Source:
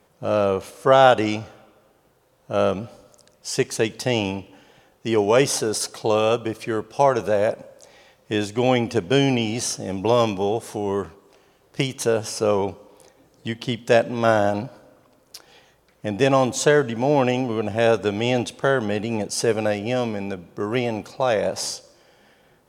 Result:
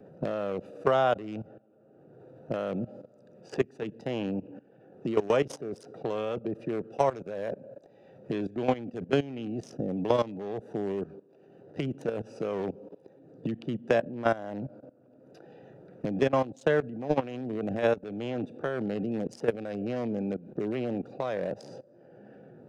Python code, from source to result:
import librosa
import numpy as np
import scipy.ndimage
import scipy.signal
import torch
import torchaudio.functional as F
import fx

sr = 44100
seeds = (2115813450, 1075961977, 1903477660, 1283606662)

y = fx.wiener(x, sr, points=41)
y = scipy.signal.sosfilt(scipy.signal.butter(4, 120.0, 'highpass', fs=sr, output='sos'), y)
y = fx.high_shelf(y, sr, hz=5000.0, db=-11.0)
y = fx.notch(y, sr, hz=870.0, q=18.0)
y = fx.level_steps(y, sr, step_db=18)
y = fx.vibrato(y, sr, rate_hz=0.79, depth_cents=22.0)
y = fx.band_squash(y, sr, depth_pct=70)